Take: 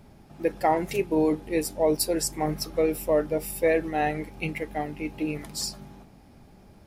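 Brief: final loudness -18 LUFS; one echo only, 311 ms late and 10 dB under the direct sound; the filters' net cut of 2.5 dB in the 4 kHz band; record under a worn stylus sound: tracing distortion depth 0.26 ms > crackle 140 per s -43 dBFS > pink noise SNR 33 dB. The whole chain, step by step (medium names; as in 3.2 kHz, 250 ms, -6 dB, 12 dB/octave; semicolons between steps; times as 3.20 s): peaking EQ 4 kHz -3.5 dB; delay 311 ms -10 dB; tracing distortion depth 0.26 ms; crackle 140 per s -43 dBFS; pink noise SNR 33 dB; trim +9 dB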